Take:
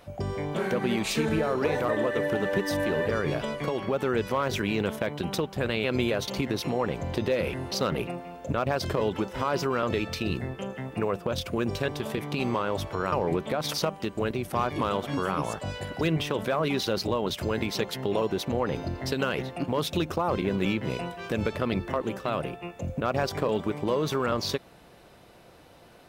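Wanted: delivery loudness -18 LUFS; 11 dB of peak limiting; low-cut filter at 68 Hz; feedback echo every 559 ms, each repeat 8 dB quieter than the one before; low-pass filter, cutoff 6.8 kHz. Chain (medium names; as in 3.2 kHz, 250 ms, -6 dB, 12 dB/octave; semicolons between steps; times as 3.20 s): high-pass 68 Hz; low-pass 6.8 kHz; peak limiter -22 dBFS; feedback delay 559 ms, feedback 40%, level -8 dB; trim +14 dB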